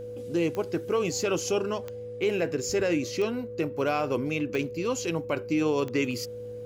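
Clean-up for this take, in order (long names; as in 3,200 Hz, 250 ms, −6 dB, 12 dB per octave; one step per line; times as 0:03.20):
click removal
hum removal 109.3 Hz, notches 5
notch filter 490 Hz, Q 30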